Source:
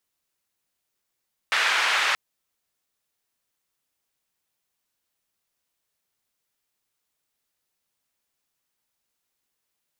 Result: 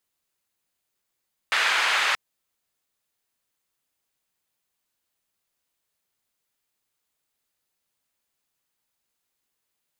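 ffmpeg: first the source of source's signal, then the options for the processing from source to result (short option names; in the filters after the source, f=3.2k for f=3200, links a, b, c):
-f lavfi -i "anoisesrc=c=white:d=0.63:r=44100:seed=1,highpass=f=1300,lowpass=f=2100,volume=-4.4dB"
-af "bandreject=f=5.6k:w=20"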